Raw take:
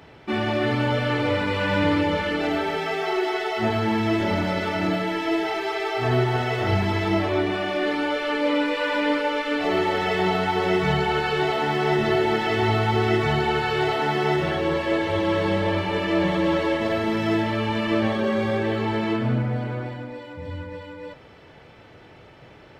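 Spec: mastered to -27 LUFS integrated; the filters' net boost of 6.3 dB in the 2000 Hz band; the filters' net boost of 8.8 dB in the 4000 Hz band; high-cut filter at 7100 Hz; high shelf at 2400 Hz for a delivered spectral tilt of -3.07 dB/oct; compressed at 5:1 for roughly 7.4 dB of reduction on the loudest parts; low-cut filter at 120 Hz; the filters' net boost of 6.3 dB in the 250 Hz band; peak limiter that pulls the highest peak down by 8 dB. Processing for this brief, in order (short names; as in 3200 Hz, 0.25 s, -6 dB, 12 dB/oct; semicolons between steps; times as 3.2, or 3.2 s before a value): HPF 120 Hz; LPF 7100 Hz; bell 250 Hz +9 dB; bell 2000 Hz +4 dB; high shelf 2400 Hz +4 dB; bell 4000 Hz +7 dB; compressor 5:1, threshold -21 dBFS; gain +0.5 dB; limiter -19 dBFS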